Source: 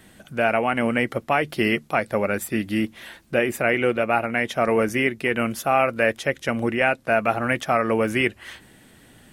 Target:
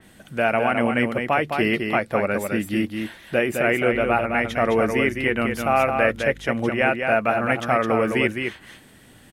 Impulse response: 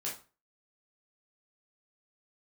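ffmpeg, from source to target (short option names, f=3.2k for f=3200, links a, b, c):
-filter_complex "[0:a]asettb=1/sr,asplit=3[a][b][c];[a]atrim=end=3.934[d];[b]atrim=start=3.93:end=6.26,asetpts=PTS-STARTPTS,afade=t=in:d=0.004:c=qsin,afade=t=out:st=2.326:d=0.004:c=qsin,aeval=exprs='val(0)+0.0141*(sin(2*PI*50*n/s)+sin(2*PI*2*50*n/s)/2+sin(2*PI*3*50*n/s)/3+sin(2*PI*4*50*n/s)/4+sin(2*PI*5*50*n/s)/5)':c=same[e];[c]atrim=start=6.256[f];[d][e]acrossfade=d=0.004:c1=hsin:c2=qsin[g];[g][f]acrossfade=d=0.004:c1=qsin:c2=hsin,aecho=1:1:211:0.531,adynamicequalizer=threshold=0.0126:dfrequency=3800:dqfactor=0.7:tfrequency=3800:tqfactor=0.7:attack=5:release=100:ratio=0.375:range=2.5:mode=cutabove:tftype=highshelf"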